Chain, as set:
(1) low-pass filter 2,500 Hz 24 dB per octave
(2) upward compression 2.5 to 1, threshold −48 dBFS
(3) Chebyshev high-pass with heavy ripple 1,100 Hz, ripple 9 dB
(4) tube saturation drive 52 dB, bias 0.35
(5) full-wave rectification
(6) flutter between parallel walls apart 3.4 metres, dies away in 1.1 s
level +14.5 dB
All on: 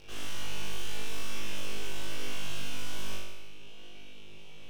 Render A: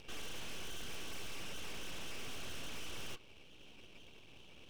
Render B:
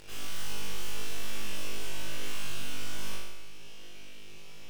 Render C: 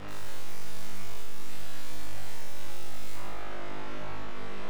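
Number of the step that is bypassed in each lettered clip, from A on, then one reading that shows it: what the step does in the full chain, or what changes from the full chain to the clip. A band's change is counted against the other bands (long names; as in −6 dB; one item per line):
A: 6, echo-to-direct ratio 5.5 dB to none audible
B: 1, 8 kHz band +2.0 dB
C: 3, change in crest factor −2.5 dB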